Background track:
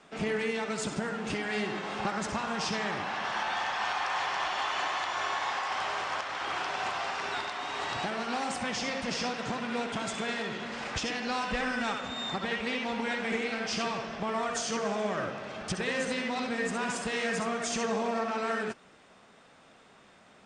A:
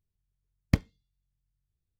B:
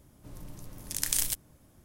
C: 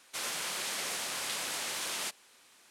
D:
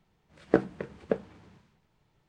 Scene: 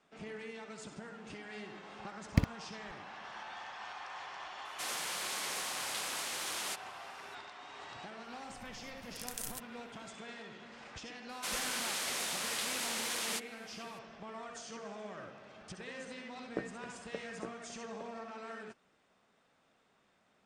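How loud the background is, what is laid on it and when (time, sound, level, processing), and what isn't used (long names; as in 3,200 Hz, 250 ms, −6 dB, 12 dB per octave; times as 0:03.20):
background track −14.5 dB
0:01.64: mix in A −4 dB + delay that plays each chunk backwards 256 ms, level −8.5 dB
0:04.65: mix in C −3 dB
0:08.25: mix in B −14 dB
0:11.29: mix in C −1 dB
0:16.03: mix in D −15.5 dB + single-tap delay 862 ms −6.5 dB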